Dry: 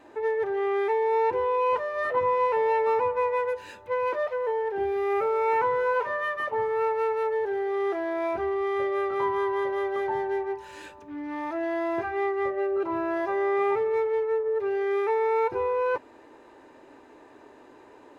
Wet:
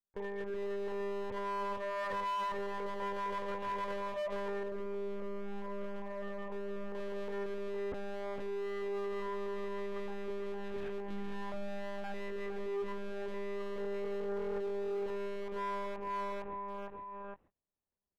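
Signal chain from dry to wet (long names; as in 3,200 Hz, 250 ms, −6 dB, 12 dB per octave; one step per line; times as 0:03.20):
noise gate −42 dBFS, range −59 dB
low-shelf EQ 200 Hz +7.5 dB
one-pitch LPC vocoder at 8 kHz 200 Hz
repeating echo 460 ms, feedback 24%, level −7 dB
downward compressor 10 to 1, threshold −30 dBFS, peak gain reduction 15.5 dB
0:04.63–0:06.95: parametric band 1,600 Hz −14.5 dB 1.6 octaves
automatic gain control gain up to 7.5 dB
hard clipping −26 dBFS, distortion −9 dB
brickwall limiter −36.5 dBFS, peak gain reduction 10.5 dB
level +3.5 dB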